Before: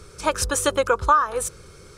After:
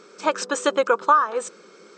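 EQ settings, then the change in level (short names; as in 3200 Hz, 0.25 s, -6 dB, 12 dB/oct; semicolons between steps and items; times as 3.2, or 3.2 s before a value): brick-wall FIR band-pass 180–8500 Hz; high shelf 5500 Hz -9.5 dB; +1.0 dB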